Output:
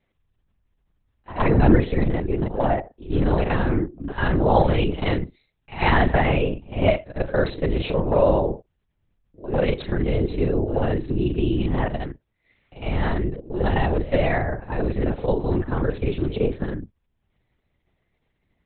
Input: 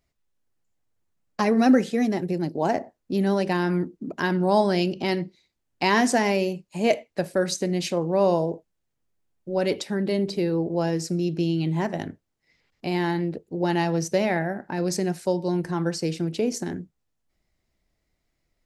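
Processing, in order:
reversed piece by piece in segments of 31 ms
echo ahead of the sound 103 ms −16 dB
linear-prediction vocoder at 8 kHz whisper
level +3.5 dB

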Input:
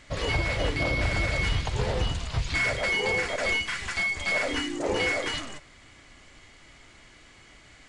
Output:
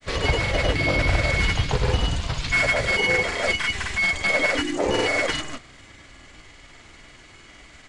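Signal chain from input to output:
granular cloud, pitch spread up and down by 0 semitones
level +6.5 dB

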